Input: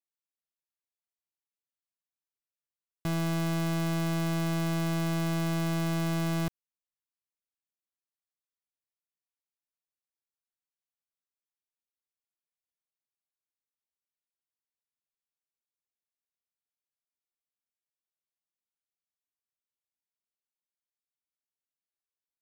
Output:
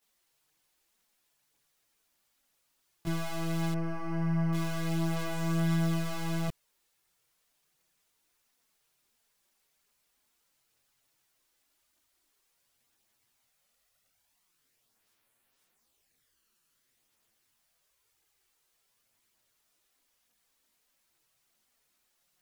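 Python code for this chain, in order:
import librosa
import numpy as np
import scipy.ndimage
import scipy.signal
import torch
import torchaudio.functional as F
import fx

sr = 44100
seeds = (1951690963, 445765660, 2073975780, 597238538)

y = fx.quant_dither(x, sr, seeds[0], bits=12, dither='triangular')
y = fx.moving_average(y, sr, points=12, at=(3.72, 4.53))
y = fx.chorus_voices(y, sr, voices=4, hz=0.24, base_ms=19, depth_ms=4.7, mix_pct=70)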